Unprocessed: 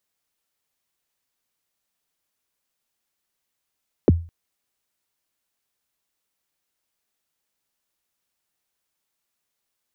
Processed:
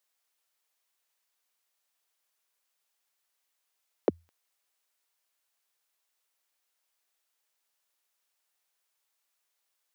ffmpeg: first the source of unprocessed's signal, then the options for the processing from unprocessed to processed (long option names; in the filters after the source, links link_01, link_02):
-f lavfi -i "aevalsrc='0.422*pow(10,-3*t/0.35)*sin(2*PI*(530*0.025/log(84/530)*(exp(log(84/530)*min(t,0.025)/0.025)-1)+84*max(t-0.025,0)))':duration=0.21:sample_rate=44100"
-af "highpass=520"